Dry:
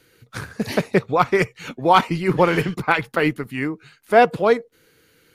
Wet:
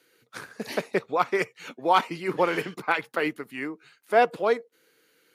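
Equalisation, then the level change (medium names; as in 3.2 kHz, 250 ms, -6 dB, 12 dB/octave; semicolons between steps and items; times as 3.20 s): high-pass 290 Hz 12 dB/octave; -6.0 dB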